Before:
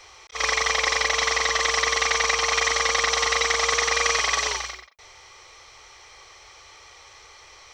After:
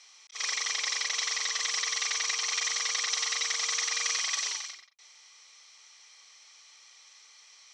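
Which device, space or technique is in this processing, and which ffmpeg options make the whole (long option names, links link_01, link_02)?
piezo pickup straight into a mixer: -af "lowpass=7400,aderivative"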